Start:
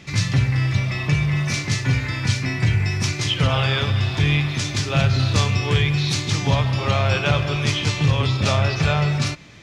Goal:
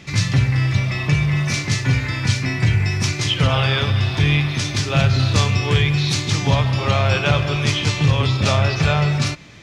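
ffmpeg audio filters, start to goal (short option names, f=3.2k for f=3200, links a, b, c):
-filter_complex "[0:a]asettb=1/sr,asplit=3[a][b][c];[a]atrim=end=3.554[d];[b]atrim=start=3.55:end=4.79,asetpts=PTS-STARTPTS,afade=t=in:d=0.004:c=qsin,afade=t=out:st=1.236:d=0.004:c=qsin,bandreject=f=7.2k:w=9.8[e];[c]atrim=start=4.786[f];[d][e]acrossfade=d=0.004:c1=hsin:c2=qsin[g];[g][f]acrossfade=d=0.004:c1=qsin:c2=hsin,volume=2dB"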